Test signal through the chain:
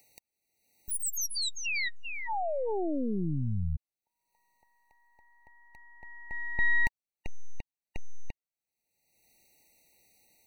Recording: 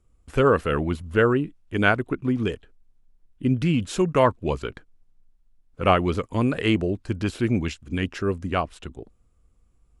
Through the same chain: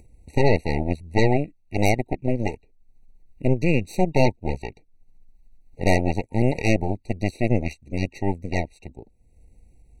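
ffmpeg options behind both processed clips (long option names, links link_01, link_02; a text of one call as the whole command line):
ffmpeg -i in.wav -af "acompressor=mode=upward:threshold=-33dB:ratio=2.5,aeval=exprs='0.708*(cos(1*acos(clip(val(0)/0.708,-1,1)))-cos(1*PI/2))+0.0794*(cos(2*acos(clip(val(0)/0.708,-1,1)))-cos(2*PI/2))+0.0141*(cos(3*acos(clip(val(0)/0.708,-1,1)))-cos(3*PI/2))+0.112*(cos(4*acos(clip(val(0)/0.708,-1,1)))-cos(4*PI/2))+0.2*(cos(8*acos(clip(val(0)/0.708,-1,1)))-cos(8*PI/2))':channel_layout=same,afftfilt=real='re*eq(mod(floor(b*sr/1024/940),2),0)':imag='im*eq(mod(floor(b*sr/1024/940),2),0)':win_size=1024:overlap=0.75,volume=-3.5dB" out.wav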